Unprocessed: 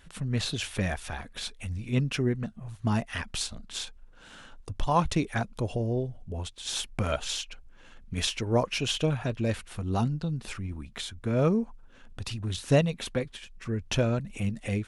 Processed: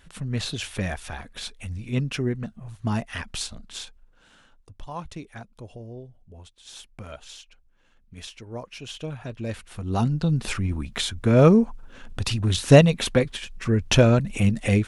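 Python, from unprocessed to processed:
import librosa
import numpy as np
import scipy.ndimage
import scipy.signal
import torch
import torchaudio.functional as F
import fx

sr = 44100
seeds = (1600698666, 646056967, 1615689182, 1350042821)

y = fx.gain(x, sr, db=fx.line((3.6, 1.0), (4.71, -11.0), (8.66, -11.0), (9.81, 0.5), (10.33, 9.5)))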